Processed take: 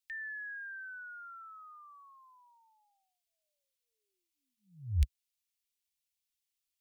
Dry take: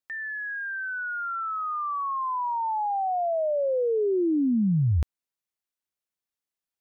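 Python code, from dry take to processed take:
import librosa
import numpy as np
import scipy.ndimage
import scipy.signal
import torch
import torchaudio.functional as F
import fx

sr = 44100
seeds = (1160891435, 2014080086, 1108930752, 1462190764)

y = scipy.signal.sosfilt(scipy.signal.cheby2(4, 70, [220.0, 720.0], 'bandstop', fs=sr, output='sos'), x)
y = y * 10.0 ** (3.5 / 20.0)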